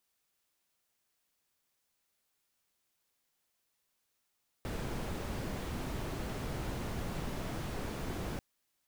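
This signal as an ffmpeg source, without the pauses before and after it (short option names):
-f lavfi -i "anoisesrc=c=brown:a=0.0624:d=3.74:r=44100:seed=1"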